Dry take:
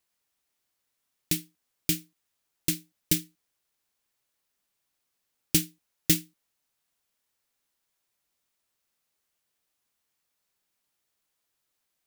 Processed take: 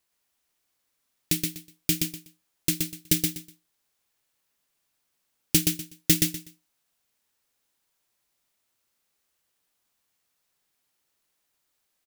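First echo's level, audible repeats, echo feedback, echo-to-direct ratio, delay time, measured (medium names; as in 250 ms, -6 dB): -4.0 dB, 3, 22%, -4.0 dB, 123 ms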